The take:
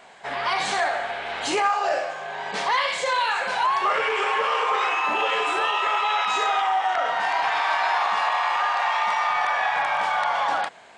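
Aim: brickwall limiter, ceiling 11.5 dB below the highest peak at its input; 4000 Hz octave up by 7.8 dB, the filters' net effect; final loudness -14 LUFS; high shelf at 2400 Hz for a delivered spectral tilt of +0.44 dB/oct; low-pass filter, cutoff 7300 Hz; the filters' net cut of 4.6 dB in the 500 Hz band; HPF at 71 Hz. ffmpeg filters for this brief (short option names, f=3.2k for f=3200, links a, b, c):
-af "highpass=71,lowpass=7.3k,equalizer=f=500:t=o:g=-7,highshelf=f=2.4k:g=7,equalizer=f=4k:t=o:g=4.5,volume=13.5dB,alimiter=limit=-6.5dB:level=0:latency=1"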